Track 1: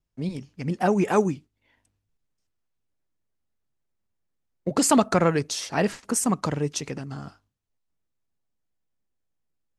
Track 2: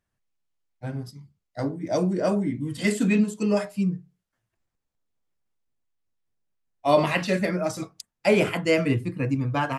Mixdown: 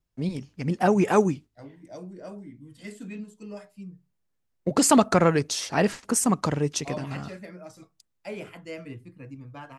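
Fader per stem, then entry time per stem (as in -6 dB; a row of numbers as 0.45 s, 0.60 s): +1.0 dB, -17.0 dB; 0.00 s, 0.00 s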